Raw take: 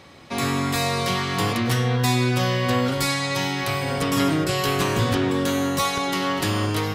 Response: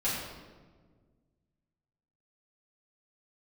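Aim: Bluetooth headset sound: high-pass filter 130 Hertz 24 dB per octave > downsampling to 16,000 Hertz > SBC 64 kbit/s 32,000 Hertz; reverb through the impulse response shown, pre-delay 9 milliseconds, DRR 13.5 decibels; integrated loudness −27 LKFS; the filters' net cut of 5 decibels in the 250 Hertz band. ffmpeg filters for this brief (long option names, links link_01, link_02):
-filter_complex "[0:a]equalizer=frequency=250:width_type=o:gain=-6,asplit=2[link_01][link_02];[1:a]atrim=start_sample=2205,adelay=9[link_03];[link_02][link_03]afir=irnorm=-1:irlink=0,volume=-21.5dB[link_04];[link_01][link_04]amix=inputs=2:normalize=0,highpass=frequency=130:width=0.5412,highpass=frequency=130:width=1.3066,aresample=16000,aresample=44100,volume=-3dB" -ar 32000 -c:a sbc -b:a 64k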